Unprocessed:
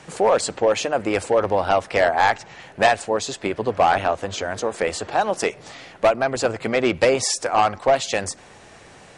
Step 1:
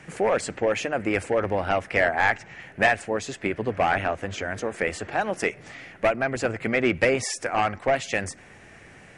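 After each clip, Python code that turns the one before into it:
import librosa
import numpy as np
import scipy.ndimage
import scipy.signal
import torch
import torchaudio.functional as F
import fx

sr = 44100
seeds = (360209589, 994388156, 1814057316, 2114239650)

y = fx.graphic_eq_10(x, sr, hz=(500, 1000, 2000, 4000, 8000), db=(-4, -8, 6, -10, -6))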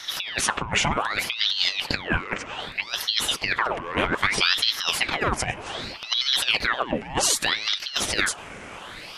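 y = fx.over_compress(x, sr, threshold_db=-28.0, ratio=-0.5)
y = fx.ring_lfo(y, sr, carrier_hz=2000.0, swing_pct=85, hz=0.64)
y = y * librosa.db_to_amplitude(7.5)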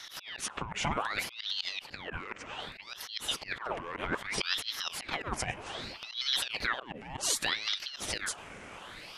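y = fx.auto_swell(x, sr, attack_ms=122.0)
y = y * librosa.db_to_amplitude(-7.5)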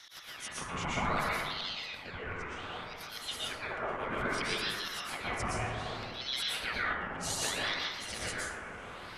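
y = fx.rev_plate(x, sr, seeds[0], rt60_s=1.7, hf_ratio=0.25, predelay_ms=105, drr_db=-8.0)
y = y * librosa.db_to_amplitude(-7.5)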